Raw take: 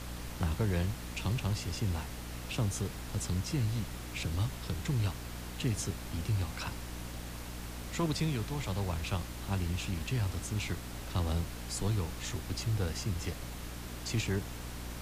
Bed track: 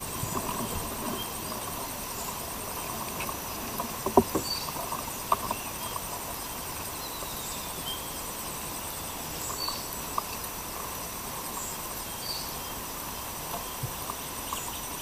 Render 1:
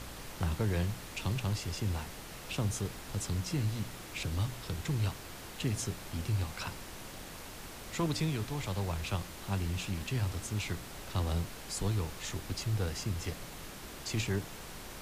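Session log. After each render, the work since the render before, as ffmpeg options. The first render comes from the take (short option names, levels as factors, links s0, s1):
-af "bandreject=f=60:t=h:w=4,bandreject=f=120:t=h:w=4,bandreject=f=180:t=h:w=4,bandreject=f=240:t=h:w=4,bandreject=f=300:t=h:w=4"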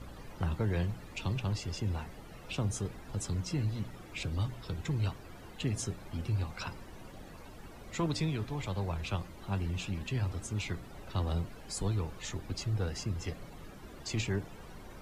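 -af "afftdn=nr=14:nf=-47"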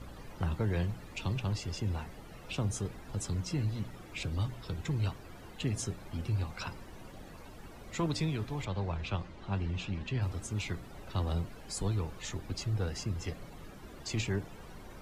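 -filter_complex "[0:a]asettb=1/sr,asplit=3[s0][s1][s2];[s0]atrim=end=8.654[s3];[s1]atrim=start=8.65:end=10.22,asetpts=PTS-STARTPTS,afade=t=in:d=0.004:c=qsin,afade=t=out:st=1.566:d=0.004:c=qsin,lowpass=5000[s4];[s2]atrim=start=10.216[s5];[s3][s4]acrossfade=d=0.004:c1=hsin:c2=qsin[s6];[s6][s5]acrossfade=d=0.004:c1=qsin:c2=hsin"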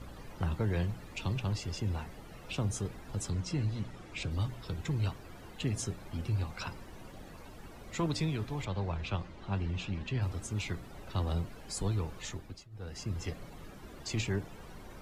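-filter_complex "[0:a]asettb=1/sr,asplit=3[s0][s1][s2];[s0]atrim=end=3.304[s3];[s1]atrim=start=3.3:end=4.31,asetpts=PTS-STARTPTS,afade=t=in:d=0.004:c=qsin,afade=t=out:st=1.006:d=0.004:c=qsin,lowpass=9200[s4];[s2]atrim=start=4.306[s5];[s3][s4]acrossfade=d=0.004:c1=hsin:c2=qsin[s6];[s6][s5]acrossfade=d=0.004:c1=qsin:c2=hsin,asplit=3[s7][s8][s9];[s7]atrim=end=12.68,asetpts=PTS-STARTPTS,afade=t=out:st=12.22:d=0.46:silence=0.0668344[s10];[s8]atrim=start=12.68:end=12.7,asetpts=PTS-STARTPTS,volume=0.0668[s11];[s9]atrim=start=12.7,asetpts=PTS-STARTPTS,afade=t=in:d=0.46:silence=0.0668344[s12];[s10][s11][s12]concat=n=3:v=0:a=1"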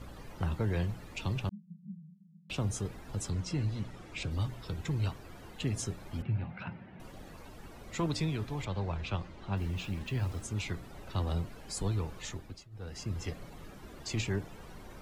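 -filter_complex "[0:a]asettb=1/sr,asplit=3[s0][s1][s2];[s0]atrim=end=1.494[s3];[s1]atrim=start=1.49:end=2.5,asetpts=PTS-STARTPTS,afade=t=in:d=0.004:c=qsin,afade=t=out:st=1.006:d=0.004:c=qsin,asuperpass=centerf=180:order=20:qfactor=3[s4];[s2]atrim=start=2.496[s5];[s3][s4]acrossfade=d=0.004:c1=hsin:c2=qsin[s6];[s6][s5]acrossfade=d=0.004:c1=qsin:c2=hsin,asettb=1/sr,asplit=3[s7][s8][s9];[s7]atrim=end=6.224[s10];[s8]atrim=start=6.22:end=7,asetpts=PTS-STARTPTS,afade=t=in:d=0.004:c=qsin,afade=t=out:st=0.776:d=0.004:c=qsin,highpass=120,equalizer=f=120:t=q:w=4:g=6,equalizer=f=180:t=q:w=4:g=10,equalizer=f=320:t=q:w=4:g=-4,equalizer=f=460:t=q:w=4:g=-7,equalizer=f=1100:t=q:w=4:g=-9,lowpass=f=2600:w=0.5412,lowpass=f=2600:w=1.3066[s11];[s9]atrim=start=6.996[s12];[s10][s11]acrossfade=d=0.004:c1=hsin:c2=qsin[s13];[s13][s12]acrossfade=d=0.004:c1=qsin:c2=hsin,asplit=3[s14][s15][s16];[s14]afade=t=out:st=9.56:d=0.02[s17];[s15]acrusher=bits=8:mix=0:aa=0.5,afade=t=in:st=9.56:d=0.02,afade=t=out:st=10.41:d=0.02[s18];[s16]afade=t=in:st=10.41:d=0.02[s19];[s17][s18][s19]amix=inputs=3:normalize=0"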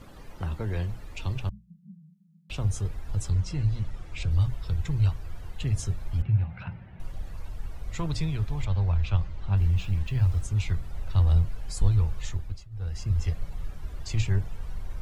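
-af "bandreject=f=60:t=h:w=6,bandreject=f=120:t=h:w=6,asubboost=boost=11:cutoff=78"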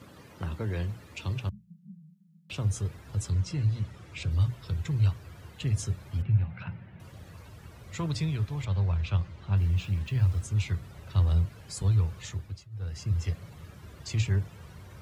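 -af "highpass=f=84:w=0.5412,highpass=f=84:w=1.3066,equalizer=f=780:t=o:w=0.46:g=-4.5"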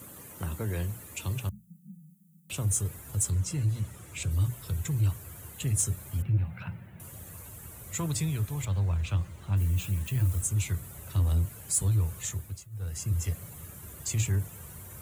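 -af "aexciter=amount=8.3:drive=6:freq=7100,asoftclip=type=tanh:threshold=0.126"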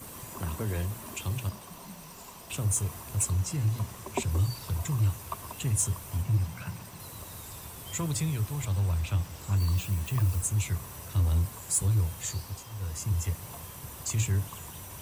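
-filter_complex "[1:a]volume=0.251[s0];[0:a][s0]amix=inputs=2:normalize=0"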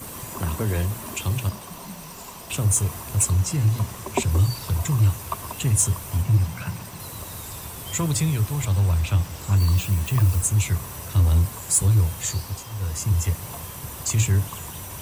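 -af "volume=2.37"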